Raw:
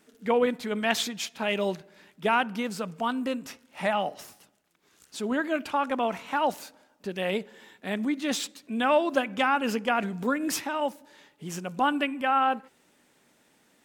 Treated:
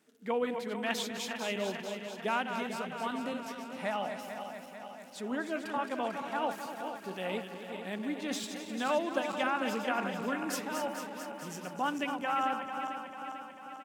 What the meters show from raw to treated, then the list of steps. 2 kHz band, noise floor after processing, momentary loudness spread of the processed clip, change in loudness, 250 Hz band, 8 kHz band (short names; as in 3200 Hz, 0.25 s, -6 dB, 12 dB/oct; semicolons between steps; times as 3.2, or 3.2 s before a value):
-6.0 dB, -48 dBFS, 10 LU, -7.0 dB, -6.5 dB, -6.0 dB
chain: regenerating reverse delay 0.222 s, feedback 77%, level -7.5 dB; HPF 100 Hz; echo 0.257 s -12 dB; gain -8 dB